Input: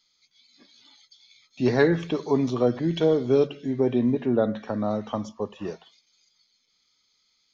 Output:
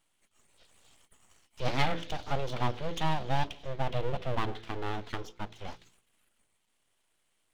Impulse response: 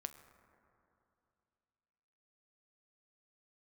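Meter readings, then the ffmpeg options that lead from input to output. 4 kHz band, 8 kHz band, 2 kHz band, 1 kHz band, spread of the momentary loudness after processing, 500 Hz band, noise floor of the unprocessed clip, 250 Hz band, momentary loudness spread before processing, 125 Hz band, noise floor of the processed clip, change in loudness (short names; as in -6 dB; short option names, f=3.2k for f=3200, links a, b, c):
+0.5 dB, n/a, -3.5 dB, +1.5 dB, 12 LU, -14.0 dB, -70 dBFS, -16.0 dB, 12 LU, -4.5 dB, -75 dBFS, -10.0 dB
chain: -af "aeval=exprs='abs(val(0))':c=same,equalizer=f=3.2k:t=o:w=0.76:g=8.5,bandreject=f=56.41:t=h:w=4,bandreject=f=112.82:t=h:w=4,bandreject=f=169.23:t=h:w=4,bandreject=f=225.64:t=h:w=4,bandreject=f=282.05:t=h:w=4,bandreject=f=338.46:t=h:w=4,bandreject=f=394.87:t=h:w=4,bandreject=f=451.28:t=h:w=4,bandreject=f=507.69:t=h:w=4,volume=-6dB"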